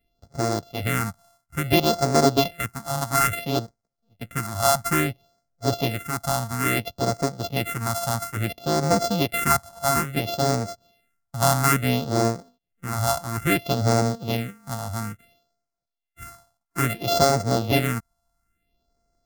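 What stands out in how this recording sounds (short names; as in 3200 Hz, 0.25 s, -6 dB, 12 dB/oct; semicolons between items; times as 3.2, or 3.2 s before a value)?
a buzz of ramps at a fixed pitch in blocks of 64 samples; phasing stages 4, 0.59 Hz, lowest notch 390–2900 Hz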